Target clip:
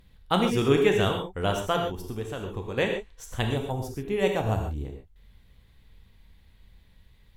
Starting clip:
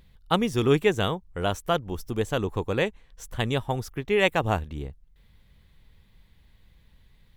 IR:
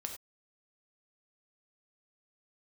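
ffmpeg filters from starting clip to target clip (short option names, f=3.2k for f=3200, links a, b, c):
-filter_complex "[0:a]asplit=3[a][b][c];[a]afade=t=out:st=1.86:d=0.02[d];[b]acompressor=threshold=-31dB:ratio=5,afade=t=in:st=1.86:d=0.02,afade=t=out:st=2.76:d=0.02[e];[c]afade=t=in:st=2.76:d=0.02[f];[d][e][f]amix=inputs=3:normalize=0,asettb=1/sr,asplit=3[g][h][i];[g]atrim=end=3.424[j];[h]atrim=start=3.42:end=4.85,asetpts=PTS-STARTPTS,afade=t=in:d=0.004:c=qsin,afade=t=out:st=1.426:d=0.004:c=qsin,equalizer=f=2k:t=o:w=2.7:g=-10[k];[i]atrim=start=4.846[l];[j][k]acrossfade=d=0.004:c1=hsin:c2=qsin[m];[m][l]acrossfade=d=0.004:c1=qsin:c2=hsin[n];[1:a]atrim=start_sample=2205,asetrate=32193,aresample=44100[o];[n][o]afir=irnorm=-1:irlink=0"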